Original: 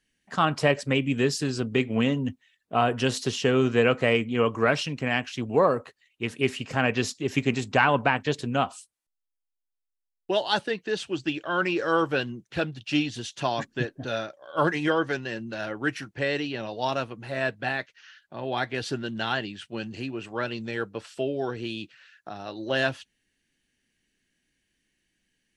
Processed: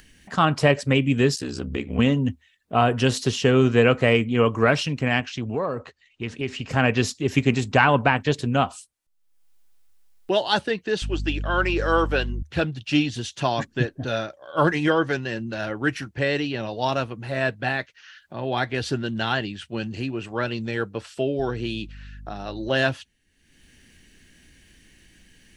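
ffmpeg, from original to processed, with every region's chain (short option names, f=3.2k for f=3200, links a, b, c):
-filter_complex "[0:a]asettb=1/sr,asplit=3[a][b][c];[a]atrim=end=1.354[d];[b]atrim=start=1.35:end=1.99,asetpts=PTS-STARTPTS,afade=t=in:d=0.004:c=qsin,afade=t=out:st=0.636:d=0.004:c=qsin,equalizer=f=140:t=o:w=0.36:g=-9.5,acompressor=threshold=-33dB:ratio=1.5:attack=3.2:release=140:knee=1:detection=peak,aeval=exprs='val(0)*sin(2*PI*33*n/s)':c=same[e];[c]atrim=start=1.986[f];[d][e]acrossfade=d=0.004:c1=hsin:c2=qsin[g];[g][f]acrossfade=d=0.004:c1=qsin:c2=hsin,asettb=1/sr,asplit=3[h][i][j];[h]atrim=end=5.204[k];[i]atrim=start=5.2:end=6.69,asetpts=PTS-STARTPTS,afade=t=in:d=0.004:c=qsin,afade=t=out:st=1.486:d=0.004:c=qsin,lowpass=f=7.1k:w=0.5412,lowpass=f=7.1k:w=1.3066,acompressor=threshold=-32dB:ratio=2:attack=3.2:release=140:knee=1:detection=peak[l];[j]atrim=start=6.686[m];[k][l]acrossfade=d=0.004:c1=hsin:c2=qsin[n];[n][m]acrossfade=d=0.004:c1=qsin:c2=hsin,asettb=1/sr,asplit=3[o][p][q];[o]atrim=end=11.024[r];[p]atrim=start=11.02:end=12.43,asetpts=PTS-STARTPTS,afade=t=in:d=0.004:c=qsin,afade=t=out:st=1.406:d=0.004:c=qsin,highpass=320,aeval=exprs='val(0)+0.0158*(sin(2*PI*50*n/s)+sin(2*PI*2*50*n/s)/2+sin(2*PI*3*50*n/s)/3+sin(2*PI*4*50*n/s)/4+sin(2*PI*5*50*n/s)/5)':c=same[s];[q]atrim=start=12.426[t];[r][s]acrossfade=d=0.004:c1=hsin:c2=qsin[u];[u][t]acrossfade=d=0.004:c1=qsin:c2=hsin,asettb=1/sr,asplit=3[v][w][x];[v]atrim=end=21.394[y];[w]atrim=start=21.39:end=22.69,asetpts=PTS-STARTPTS,afade=t=in:d=0.004:c=qsin,afade=t=out:st=1.296:d=0.004:c=qsin,highpass=46,aeval=exprs='val(0)+0.00355*(sin(2*PI*50*n/s)+sin(2*PI*2*50*n/s)/2+sin(2*PI*3*50*n/s)/3+sin(2*PI*4*50*n/s)/4+sin(2*PI*5*50*n/s)/5)':c=same[z];[x]atrim=start=22.686[aa];[y][z]acrossfade=d=0.004:c1=hsin:c2=qsin[ab];[ab][aa]acrossfade=d=0.004:c1=qsin:c2=hsin,lowshelf=f=120:g=8.5,acompressor=mode=upward:threshold=-42dB:ratio=2.5,equalizer=f=75:w=5.5:g=7.5,volume=3dB"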